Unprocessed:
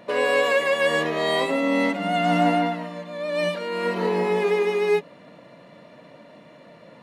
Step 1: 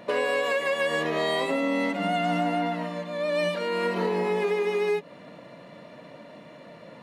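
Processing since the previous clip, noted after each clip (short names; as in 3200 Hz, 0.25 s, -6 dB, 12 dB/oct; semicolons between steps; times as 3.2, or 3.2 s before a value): compressor, threshold -24 dBFS, peak gain reduction 9 dB; gain +1.5 dB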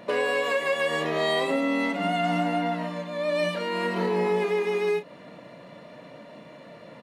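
doubler 33 ms -10 dB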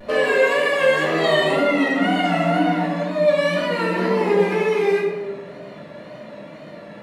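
vibrato 2 Hz 85 cents; reverb RT60 1.2 s, pre-delay 3 ms, DRR -5.5 dB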